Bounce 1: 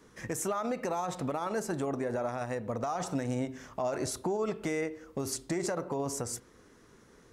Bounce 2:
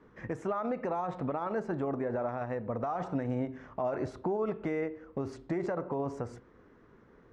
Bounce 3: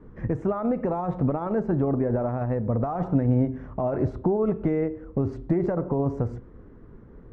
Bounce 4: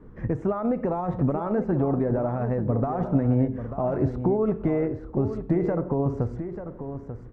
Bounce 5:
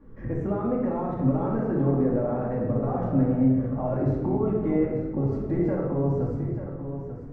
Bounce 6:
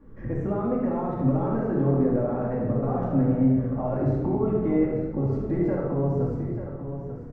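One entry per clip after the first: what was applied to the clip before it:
low-pass filter 1,800 Hz 12 dB per octave
spectral tilt −4 dB per octave; level +2.5 dB
single-tap delay 890 ms −10 dB
rectangular room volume 950 cubic metres, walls mixed, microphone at 2.3 metres; level −6.5 dB
single-tap delay 74 ms −9 dB

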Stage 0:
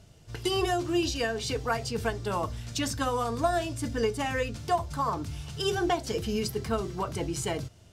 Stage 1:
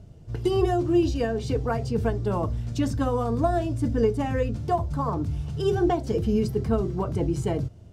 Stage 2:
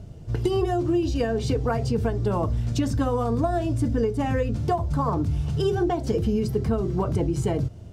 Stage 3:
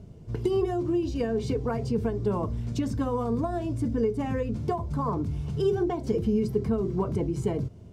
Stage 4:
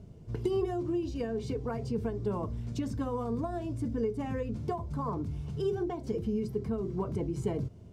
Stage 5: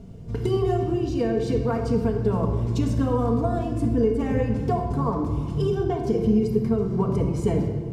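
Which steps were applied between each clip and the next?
tilt shelving filter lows +9 dB, about 880 Hz
downward compressor, threshold −26 dBFS, peak gain reduction 9.5 dB; level +6 dB
hollow resonant body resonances 210/400/1,000/2,200 Hz, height 7 dB, ringing for 25 ms; level −7.5 dB
speech leveller within 5 dB 2 s; level −6 dB
rectangular room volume 2,000 cubic metres, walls mixed, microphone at 1.7 metres; level +6.5 dB

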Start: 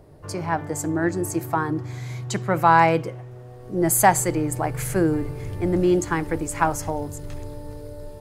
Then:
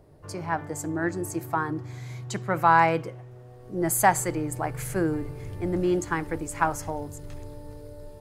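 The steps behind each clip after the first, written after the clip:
dynamic equaliser 1,400 Hz, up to +4 dB, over −31 dBFS, Q 0.97
level −5.5 dB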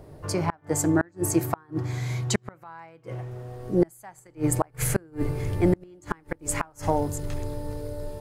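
gate with flip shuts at −18 dBFS, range −34 dB
level +8.5 dB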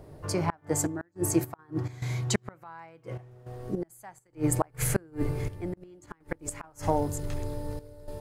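gate pattern "xxxxxx..xx.xx.xx" 104 BPM −12 dB
level −2 dB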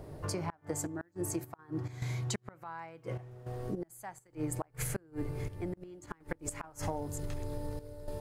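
downward compressor 6 to 1, threshold −35 dBFS, peak gain reduction 15.5 dB
level +1.5 dB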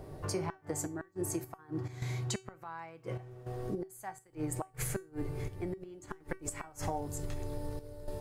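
tuned comb filter 380 Hz, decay 0.26 s, harmonics all, mix 70%
level +9 dB

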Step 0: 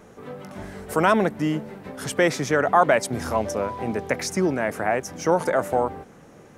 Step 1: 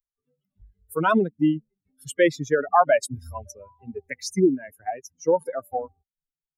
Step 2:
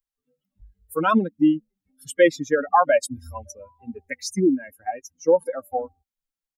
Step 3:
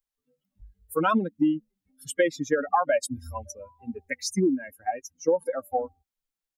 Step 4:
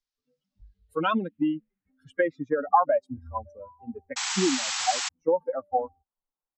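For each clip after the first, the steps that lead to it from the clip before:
spectral dynamics exaggerated over time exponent 3; dynamic equaliser 340 Hz, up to +6 dB, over −38 dBFS, Q 0.85; level +1.5 dB
comb filter 3.7 ms, depth 59%
downward compressor 6 to 1, threshold −19 dBFS, peak gain reduction 9 dB
low-pass filter sweep 5,100 Hz → 980 Hz, 0:00.52–0:02.68; sound drawn into the spectrogram noise, 0:04.16–0:05.09, 710–8,000 Hz −27 dBFS; level −3 dB

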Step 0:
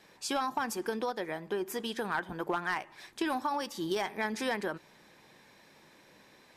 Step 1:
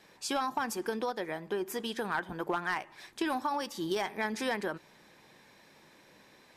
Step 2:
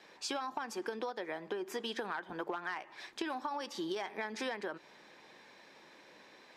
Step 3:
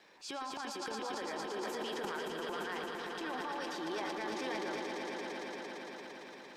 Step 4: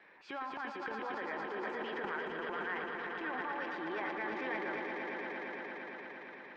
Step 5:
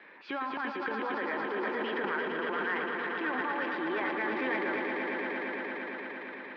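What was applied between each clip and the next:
no processing that can be heard
three-way crossover with the lows and the highs turned down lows −13 dB, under 240 Hz, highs −14 dB, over 6,600 Hz; downward compressor, threshold −37 dBFS, peak gain reduction 10 dB; level +2 dB
surface crackle 240 per second −65 dBFS; echo that builds up and dies away 114 ms, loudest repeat 5, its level −8 dB; transient designer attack −6 dB, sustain +9 dB; level −3.5 dB
low-pass with resonance 2,000 Hz, resonance Q 2.1; level −1.5 dB
in parallel at −10 dB: soft clipping −37.5 dBFS, distortion −12 dB; on the sum: loudspeaker in its box 110–4,500 Hz, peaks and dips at 140 Hz −8 dB, 260 Hz +4 dB, 750 Hz −4 dB; level +5 dB

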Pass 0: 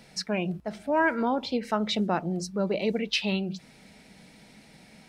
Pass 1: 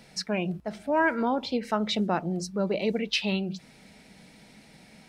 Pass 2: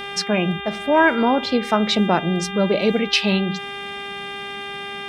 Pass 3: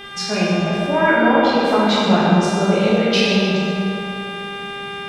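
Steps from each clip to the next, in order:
no processing that can be heard
hum with harmonics 400 Hz, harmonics 9, −40 dBFS −1 dB per octave; level +8.5 dB
dense smooth reverb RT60 2.9 s, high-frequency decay 0.55×, DRR −8.5 dB; level −6 dB

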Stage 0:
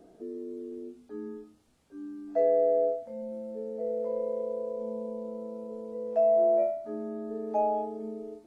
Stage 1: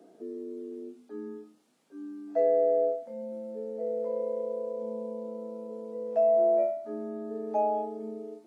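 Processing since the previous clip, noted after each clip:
high-pass filter 190 Hz 24 dB per octave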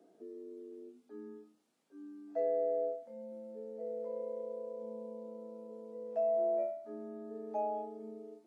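mains-hum notches 50/100/150/200/250 Hz
level −8.5 dB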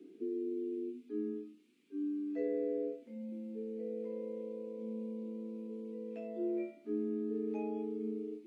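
drawn EQ curve 130 Hz 0 dB, 260 Hz +14 dB, 390 Hz +13 dB, 640 Hz −18 dB, 1,000 Hz −6 dB, 1,700 Hz +1 dB, 2,400 Hz +14 dB, 5,500 Hz 0 dB
level −1 dB

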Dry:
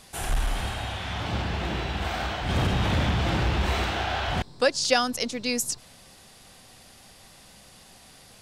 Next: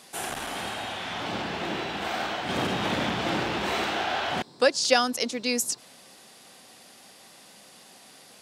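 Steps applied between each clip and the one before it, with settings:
Chebyshev high-pass filter 260 Hz, order 2
level +1.5 dB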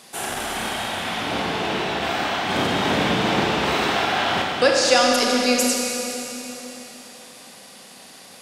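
in parallel at −11 dB: soft clipping −15.5 dBFS, distortion −16 dB
on the sum: four-comb reverb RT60 3.5 s, combs from 28 ms, DRR −1 dB
level +1.5 dB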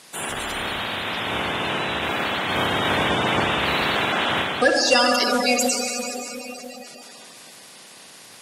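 spectral magnitudes quantised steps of 30 dB

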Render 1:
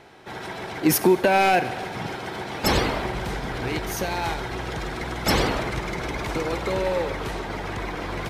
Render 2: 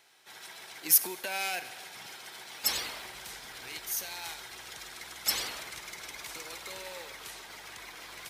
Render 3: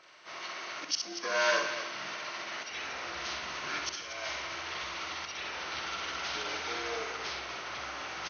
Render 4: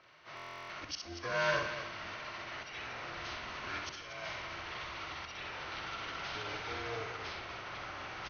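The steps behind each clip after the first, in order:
first-order pre-emphasis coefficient 0.97
partials spread apart or drawn together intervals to 79%; volume swells 525 ms; loudspeakers that aren't time-aligned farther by 22 metres −5 dB, 81 metres −10 dB; level +6.5 dB
sub-octave generator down 2 octaves, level +1 dB; high-frequency loss of the air 140 metres; buffer that repeats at 0:00.35, samples 1,024, times 14; level −3 dB

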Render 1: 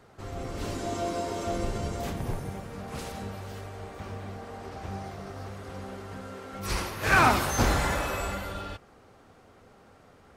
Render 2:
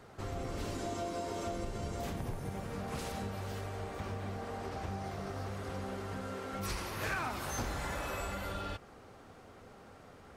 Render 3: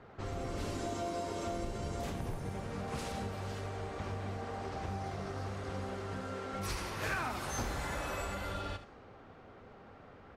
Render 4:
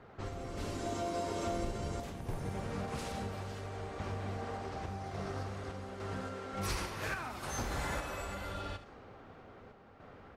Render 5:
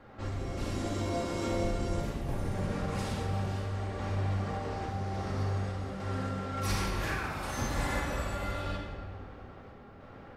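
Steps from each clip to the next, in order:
downward compressor 6 to 1, threshold −36 dBFS, peak gain reduction 18.5 dB; level +1 dB
low-pass that shuts in the quiet parts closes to 2,500 Hz, open at −33 dBFS; single-tap delay 74 ms −12 dB
sample-and-hold tremolo; level +2 dB
rectangular room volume 1,500 cubic metres, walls mixed, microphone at 2.3 metres

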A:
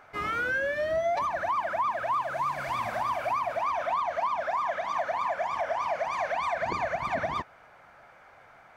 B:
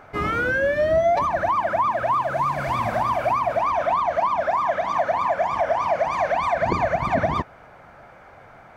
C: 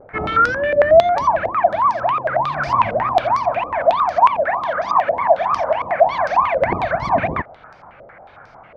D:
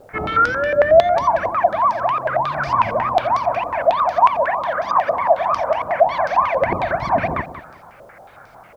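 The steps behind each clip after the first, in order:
tilt shelving filter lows +5.5 dB, about 630 Hz; level +9 dB
tape wow and flutter 77 cents; low-pass on a step sequencer 11 Hz 530–5,100 Hz
bit reduction 10 bits; on a send: repeating echo 185 ms, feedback 26%, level −12 dB; on the sum: level −1 dB

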